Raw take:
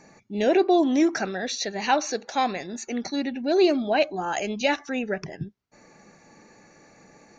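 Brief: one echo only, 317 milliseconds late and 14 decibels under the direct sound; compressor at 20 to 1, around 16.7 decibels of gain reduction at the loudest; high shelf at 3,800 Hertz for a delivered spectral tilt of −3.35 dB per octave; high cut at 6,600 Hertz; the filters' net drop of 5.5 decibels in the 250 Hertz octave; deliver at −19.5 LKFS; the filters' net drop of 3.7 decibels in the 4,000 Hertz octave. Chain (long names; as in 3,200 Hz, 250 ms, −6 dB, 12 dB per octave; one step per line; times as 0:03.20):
low-pass filter 6,600 Hz
parametric band 250 Hz −8 dB
high-shelf EQ 3,800 Hz +4 dB
parametric band 4,000 Hz −6.5 dB
downward compressor 20 to 1, threshold −34 dBFS
single-tap delay 317 ms −14 dB
level +19 dB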